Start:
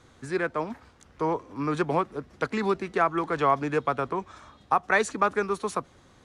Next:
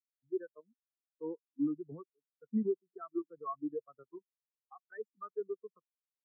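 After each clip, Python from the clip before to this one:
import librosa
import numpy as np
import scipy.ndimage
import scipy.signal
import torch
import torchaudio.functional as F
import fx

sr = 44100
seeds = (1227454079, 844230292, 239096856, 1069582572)

y = fx.dynamic_eq(x, sr, hz=820.0, q=0.85, threshold_db=-35.0, ratio=4.0, max_db=-5)
y = fx.level_steps(y, sr, step_db=10)
y = fx.spectral_expand(y, sr, expansion=4.0)
y = y * 10.0 ** (-6.5 / 20.0)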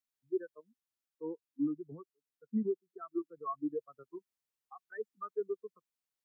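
y = fx.rider(x, sr, range_db=3, speed_s=2.0)
y = fx.peak_eq(y, sr, hz=610.0, db=-2.5, octaves=0.77)
y = y * 10.0 ** (1.0 / 20.0)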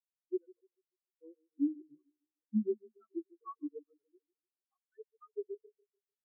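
y = fx.echo_banded(x, sr, ms=147, feedback_pct=57, hz=340.0, wet_db=-9)
y = fx.vibrato(y, sr, rate_hz=1.8, depth_cents=36.0)
y = fx.spectral_expand(y, sr, expansion=2.5)
y = y * 10.0 ** (1.0 / 20.0)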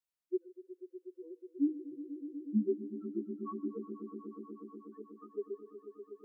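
y = fx.echo_swell(x, sr, ms=122, loudest=5, wet_db=-14.5)
y = y * 10.0 ** (1.0 / 20.0)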